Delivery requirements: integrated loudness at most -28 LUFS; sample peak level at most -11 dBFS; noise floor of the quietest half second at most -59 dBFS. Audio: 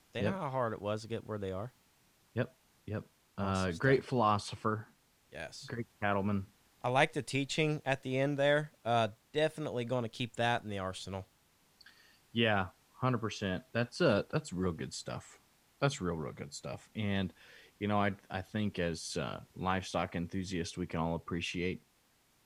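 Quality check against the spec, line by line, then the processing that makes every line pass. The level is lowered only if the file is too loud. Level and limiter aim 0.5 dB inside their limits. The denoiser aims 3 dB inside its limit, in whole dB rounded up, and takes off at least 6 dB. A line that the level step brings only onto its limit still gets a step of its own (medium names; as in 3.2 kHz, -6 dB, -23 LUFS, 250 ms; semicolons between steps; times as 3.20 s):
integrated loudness -35.0 LUFS: pass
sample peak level -14.0 dBFS: pass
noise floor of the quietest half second -71 dBFS: pass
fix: none needed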